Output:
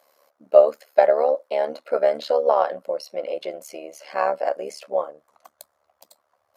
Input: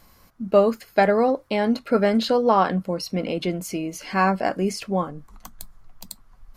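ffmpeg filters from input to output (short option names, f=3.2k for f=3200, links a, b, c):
-af "tremolo=f=73:d=0.857,highpass=f=570:t=q:w=4.9,volume=-4dB"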